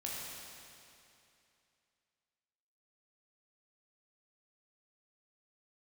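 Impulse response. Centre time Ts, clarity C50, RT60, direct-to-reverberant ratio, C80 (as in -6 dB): 156 ms, -2.0 dB, 2.7 s, -5.0 dB, -0.5 dB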